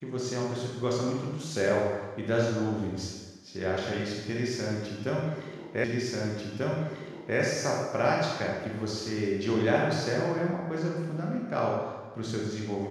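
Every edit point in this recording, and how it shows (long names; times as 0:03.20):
0:05.84: the same again, the last 1.54 s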